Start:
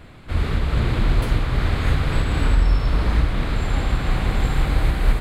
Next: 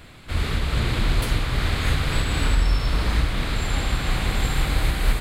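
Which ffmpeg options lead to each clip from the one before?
-af "highshelf=f=2.3k:g=11,volume=-3dB"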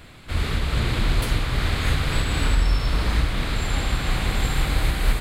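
-af anull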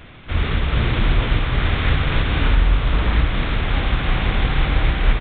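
-af "aresample=8000,aresample=44100,volume=4dB"

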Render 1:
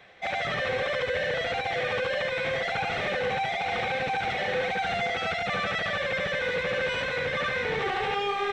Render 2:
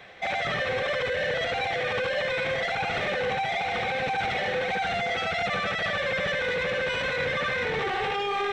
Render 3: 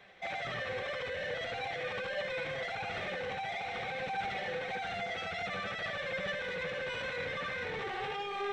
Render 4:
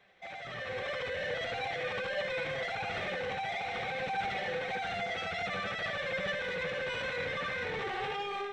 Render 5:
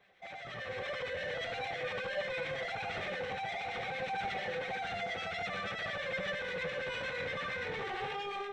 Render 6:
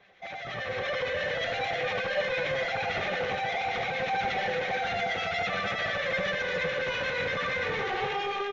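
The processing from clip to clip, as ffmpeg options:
-af "alimiter=level_in=1.5dB:limit=-24dB:level=0:latency=1:release=11,volume=-1.5dB,volume=5.5dB"
-af "flanger=delay=5:depth=6.2:regen=67:speed=0.47:shape=sinusoidal,volume=-5.5dB"
-af "dynaudnorm=f=440:g=3:m=9dB,volume=-7dB"
-filter_complex "[0:a]acrossover=split=1300[a][b];[a]aeval=exprs='val(0)*(1-0.5/2+0.5/2*cos(2*PI*8.7*n/s))':c=same[c];[b]aeval=exprs='val(0)*(1-0.5/2-0.5/2*cos(2*PI*8.7*n/s))':c=same[d];[c][d]amix=inputs=2:normalize=0"
-filter_complex "[0:a]asplit=2[a][b];[b]adelay=260,highpass=300,lowpass=3.4k,asoftclip=type=hard:threshold=-34.5dB,volume=-6dB[c];[a][c]amix=inputs=2:normalize=0,volume=7dB" -ar 16000 -c:a wmav2 -b:a 128k

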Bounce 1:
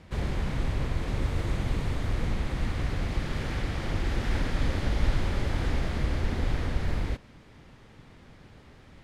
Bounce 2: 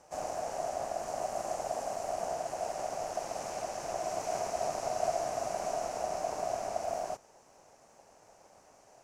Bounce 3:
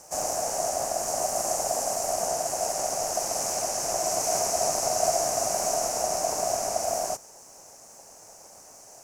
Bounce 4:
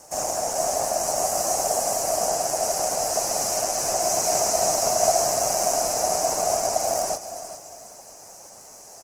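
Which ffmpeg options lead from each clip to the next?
-af "aeval=exprs='val(0)*sin(2*PI*680*n/s)':c=same,highshelf=f=4.8k:t=q:w=3:g=10,volume=-5.5dB"
-af "aexciter=amount=5.8:drive=2.2:freq=5k,volume=6dB"
-filter_complex "[0:a]asplit=2[a][b];[b]aecho=0:1:408|816|1224:0.251|0.0804|0.0257[c];[a][c]amix=inputs=2:normalize=0,volume=3.5dB" -ar 48000 -c:a libopus -b:a 16k

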